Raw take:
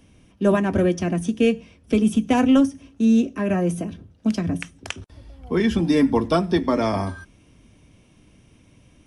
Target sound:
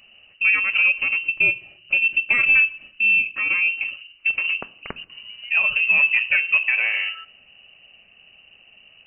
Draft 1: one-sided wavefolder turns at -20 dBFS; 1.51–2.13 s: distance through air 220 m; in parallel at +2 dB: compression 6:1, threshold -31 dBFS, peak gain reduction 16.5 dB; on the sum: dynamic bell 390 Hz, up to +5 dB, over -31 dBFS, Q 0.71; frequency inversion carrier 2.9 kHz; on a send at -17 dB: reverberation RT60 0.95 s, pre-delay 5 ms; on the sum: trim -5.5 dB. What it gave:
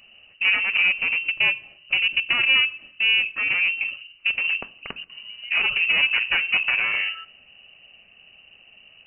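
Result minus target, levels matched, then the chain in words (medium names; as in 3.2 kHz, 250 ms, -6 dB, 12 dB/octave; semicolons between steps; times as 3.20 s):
one-sided wavefolder: distortion +30 dB
one-sided wavefolder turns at -10.5 dBFS; 1.51–2.13 s: distance through air 220 m; in parallel at +2 dB: compression 6:1, threshold -31 dBFS, peak gain reduction 17 dB; on the sum: dynamic bell 390 Hz, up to +5 dB, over -31 dBFS, Q 0.71; frequency inversion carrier 2.9 kHz; on a send at -17 dB: reverberation RT60 0.95 s, pre-delay 5 ms; on the sum: trim -5.5 dB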